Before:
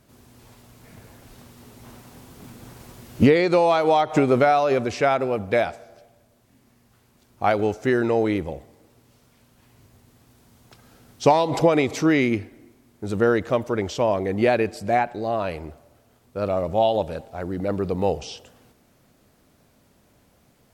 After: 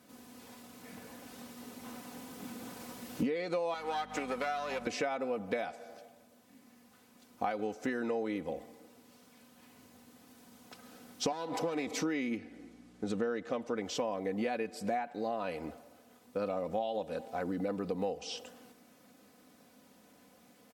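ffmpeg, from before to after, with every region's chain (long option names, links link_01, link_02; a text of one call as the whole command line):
ffmpeg -i in.wav -filter_complex "[0:a]asettb=1/sr,asplit=3[link_01][link_02][link_03];[link_01]atrim=end=3.744[link_04];[link_02]atrim=start=3.74:end=4.87,asetpts=PTS-STARTPTS,afade=type=in:duration=0.004:curve=qsin,afade=type=out:start_time=1.126:duration=0.004:curve=qsin,aeval=exprs='if(lt(val(0),0),0.447*val(0),val(0))':channel_layout=same,highpass=frequency=1300:poles=1,aeval=exprs='val(0)+0.0141*(sin(2*PI*50*n/s)+sin(2*PI*2*50*n/s)/2+sin(2*PI*3*50*n/s)/3+sin(2*PI*4*50*n/s)/4+sin(2*PI*5*50*n/s)/5)':channel_layout=same[link_05];[link_03]atrim=start=4.866[link_06];[link_04][link_05]acrossfade=duration=0.004:curve1=hsin:curve2=qsin[link_07];[link_07][link_06]acrossfade=duration=0.004:curve1=qsin:curve2=hsin,asettb=1/sr,asplit=3[link_08][link_09][link_10];[link_08]atrim=end=11.324[link_11];[link_09]atrim=start=11.32:end=11.87,asetpts=PTS-STARTPTS,afade=type=in:duration=0.004:curve=qsin,afade=type=out:start_time=0.546:duration=0.004:curve=qsin,aeval=exprs='if(lt(val(0),0),0.447*val(0),val(0))':channel_layout=same,acrossover=split=160|3000[link_12][link_13][link_14];[link_13]acompressor=threshold=-20dB:ratio=2:attack=3.2:release=140:knee=2.83:detection=peak[link_15];[link_12][link_15][link_14]amix=inputs=3:normalize=0[link_16];[link_10]atrim=start=11.866[link_17];[link_11][link_16]acrossfade=duration=0.004:curve1=hsin:curve2=qsin[link_18];[link_18][link_17]acrossfade=duration=0.004:curve1=qsin:curve2=hsin,asettb=1/sr,asplit=3[link_19][link_20][link_21];[link_19]atrim=end=12.374[link_22];[link_20]atrim=start=12.37:end=13.77,asetpts=PTS-STARTPTS,afade=type=in:duration=0.004:curve=qsin,afade=type=out:start_time=1.396:duration=0.004:curve=qsin,lowpass=7800,bandreject=frequency=990:width=13,aeval=exprs='val(0)+0.00282*(sin(2*PI*60*n/s)+sin(2*PI*2*60*n/s)/2+sin(2*PI*3*60*n/s)/3+sin(2*PI*4*60*n/s)/4+sin(2*PI*5*60*n/s)/5)':channel_layout=same[link_23];[link_21]atrim=start=13.766[link_24];[link_22][link_23]acrossfade=duration=0.004:curve1=hsin:curve2=qsin[link_25];[link_25][link_24]acrossfade=duration=0.004:curve1=qsin:curve2=hsin,highpass=160,aecho=1:1:4:0.62,acompressor=threshold=-30dB:ratio=6,volume=-2dB" out.wav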